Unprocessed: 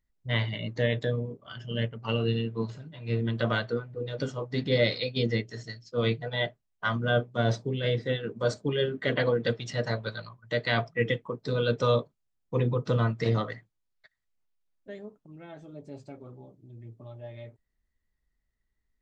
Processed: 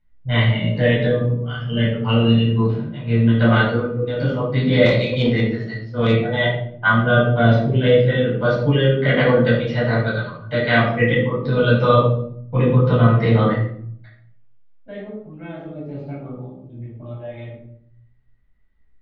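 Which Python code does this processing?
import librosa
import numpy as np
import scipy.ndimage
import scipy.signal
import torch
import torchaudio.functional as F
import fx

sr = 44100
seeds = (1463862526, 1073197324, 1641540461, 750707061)

y = scipy.signal.sosfilt(scipy.signal.butter(4, 3400.0, 'lowpass', fs=sr, output='sos'), x)
y = fx.room_shoebox(y, sr, seeds[0], volume_m3=1000.0, walls='furnished', distance_m=7.7)
y = fx.tube_stage(y, sr, drive_db=8.0, bias=0.3, at=(4.85, 6.13), fade=0.02)
y = y * 10.0 ** (2.0 / 20.0)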